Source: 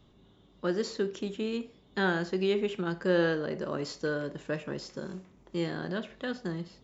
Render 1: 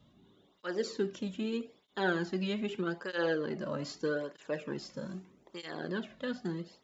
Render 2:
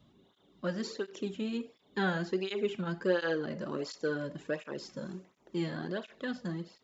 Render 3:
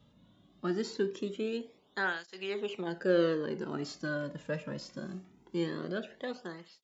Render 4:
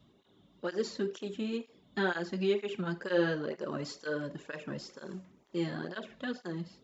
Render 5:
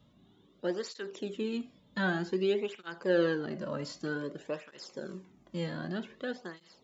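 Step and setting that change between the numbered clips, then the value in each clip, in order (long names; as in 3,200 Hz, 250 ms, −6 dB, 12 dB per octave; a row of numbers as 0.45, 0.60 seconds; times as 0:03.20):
through-zero flanger with one copy inverted, nulls at: 0.8, 1.4, 0.22, 2.1, 0.53 Hertz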